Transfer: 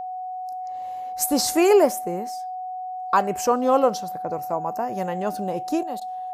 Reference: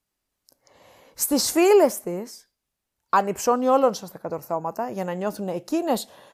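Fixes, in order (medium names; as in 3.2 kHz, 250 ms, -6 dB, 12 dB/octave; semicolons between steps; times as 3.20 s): band-stop 740 Hz, Q 30; interpolate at 6.00 s, 12 ms; trim 0 dB, from 5.83 s +11.5 dB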